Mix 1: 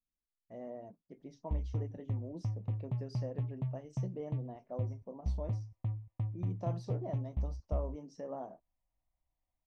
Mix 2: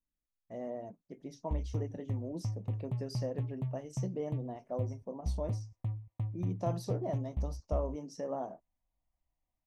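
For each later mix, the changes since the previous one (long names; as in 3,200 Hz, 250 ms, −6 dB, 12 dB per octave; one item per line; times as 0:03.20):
speech +4.5 dB
master: remove high-frequency loss of the air 98 metres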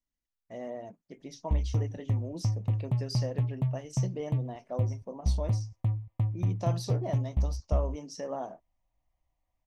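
speech: add parametric band 3,700 Hz +10 dB 2.8 octaves
background +7.5 dB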